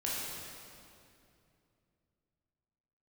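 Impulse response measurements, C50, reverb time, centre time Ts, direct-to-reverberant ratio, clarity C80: -3.0 dB, 2.6 s, 151 ms, -7.0 dB, -0.5 dB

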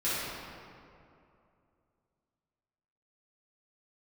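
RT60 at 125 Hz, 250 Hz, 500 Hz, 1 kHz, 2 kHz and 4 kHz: 2.9 s, 2.8 s, 2.7 s, 2.5 s, 2.0 s, 1.4 s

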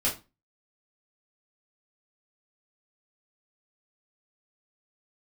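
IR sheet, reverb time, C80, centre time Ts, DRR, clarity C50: 0.25 s, 18.0 dB, 21 ms, -7.0 dB, 11.0 dB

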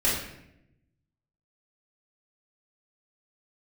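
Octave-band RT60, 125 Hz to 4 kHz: 1.5 s, 1.2 s, 0.90 s, 0.70 s, 0.80 s, 0.60 s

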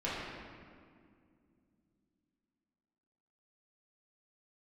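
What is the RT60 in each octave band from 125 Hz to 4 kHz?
3.6 s, 3.8 s, 2.5 s, 2.0 s, 1.8 s, 1.3 s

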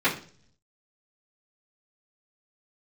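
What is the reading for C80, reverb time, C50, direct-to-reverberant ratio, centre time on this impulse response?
15.5 dB, 0.45 s, 10.5 dB, -12.0 dB, 19 ms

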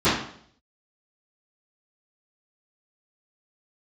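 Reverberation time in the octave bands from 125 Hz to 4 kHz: 0.65 s, 0.65 s, 0.65 s, 0.55 s, 0.55 s, 0.55 s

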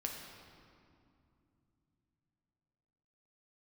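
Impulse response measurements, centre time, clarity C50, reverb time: 72 ms, 3.0 dB, 2.6 s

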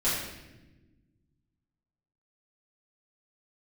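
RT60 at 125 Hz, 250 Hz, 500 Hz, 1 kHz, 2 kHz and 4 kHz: 2.3 s, 2.0 s, 1.4 s, 0.85 s, 1.0 s, 0.85 s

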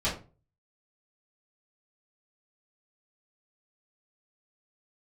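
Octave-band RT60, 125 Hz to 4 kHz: 0.55 s, 0.40 s, 0.40 s, 0.30 s, 0.25 s, 0.20 s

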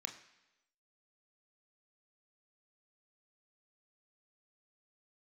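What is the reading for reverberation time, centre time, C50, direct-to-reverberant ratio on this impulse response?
1.0 s, 15 ms, 11.0 dB, 5.0 dB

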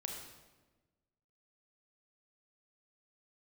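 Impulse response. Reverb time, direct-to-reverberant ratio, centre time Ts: 1.2 s, 1.0 dB, 47 ms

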